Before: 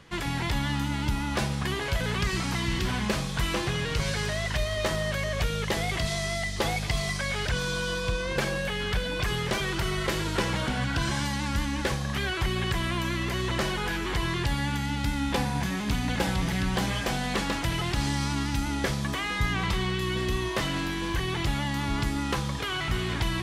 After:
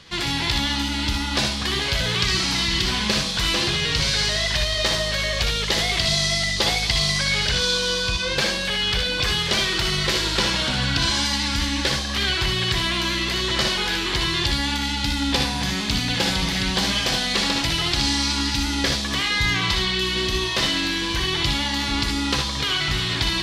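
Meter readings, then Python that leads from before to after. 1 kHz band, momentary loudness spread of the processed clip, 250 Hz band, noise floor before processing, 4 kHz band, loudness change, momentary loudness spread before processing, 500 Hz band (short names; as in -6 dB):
+3.5 dB, 3 LU, +3.0 dB, -31 dBFS, +13.5 dB, +7.5 dB, 2 LU, +2.5 dB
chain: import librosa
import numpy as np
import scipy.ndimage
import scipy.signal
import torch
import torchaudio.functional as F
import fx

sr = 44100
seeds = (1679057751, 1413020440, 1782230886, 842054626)

y = fx.peak_eq(x, sr, hz=4300.0, db=13.5, octaves=1.4)
y = fx.room_early_taps(y, sr, ms=(61, 75), db=(-6.5, -7.0))
y = y * librosa.db_to_amplitude(1.0)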